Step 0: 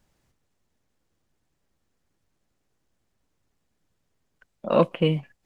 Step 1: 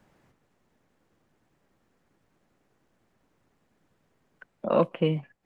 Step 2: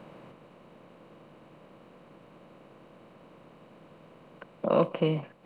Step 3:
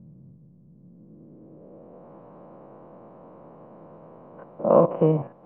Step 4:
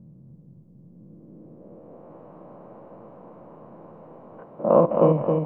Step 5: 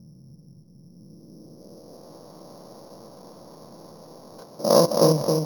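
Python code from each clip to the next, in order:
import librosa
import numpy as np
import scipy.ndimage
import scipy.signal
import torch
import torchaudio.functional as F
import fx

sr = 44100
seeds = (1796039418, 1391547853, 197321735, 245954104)

y1 = fx.band_squash(x, sr, depth_pct=40)
y1 = F.gain(torch.from_numpy(y1), -2.5).numpy()
y2 = fx.bin_compress(y1, sr, power=0.6)
y2 = F.gain(torch.from_numpy(y2), -3.0).numpy()
y3 = fx.spec_steps(y2, sr, hold_ms=50)
y3 = fx.quant_companded(y3, sr, bits=6)
y3 = fx.filter_sweep_lowpass(y3, sr, from_hz=150.0, to_hz=870.0, start_s=0.7, end_s=2.14, q=1.5)
y3 = F.gain(torch.from_numpy(y3), 6.5).numpy()
y4 = fx.echo_feedback(y3, sr, ms=267, feedback_pct=40, wet_db=-4)
y5 = np.r_[np.sort(y4[:len(y4) // 8 * 8].reshape(-1, 8), axis=1).ravel(), y4[len(y4) // 8 * 8:]]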